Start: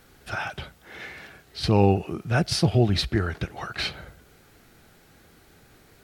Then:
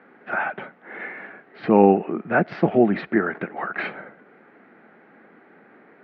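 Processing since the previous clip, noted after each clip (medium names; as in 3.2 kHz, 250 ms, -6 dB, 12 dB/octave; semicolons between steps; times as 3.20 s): elliptic band-pass 210–2000 Hz, stop band 60 dB; trim +7 dB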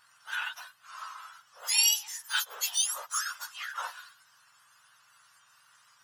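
spectrum inverted on a logarithmic axis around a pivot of 1.5 kHz; trim -5 dB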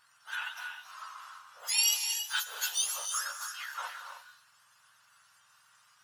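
gated-style reverb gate 340 ms rising, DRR 5.5 dB; trim -3 dB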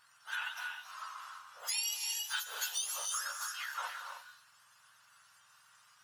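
compression 6:1, threshold -33 dBFS, peak gain reduction 10.5 dB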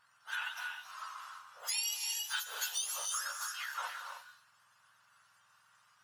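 tape noise reduction on one side only decoder only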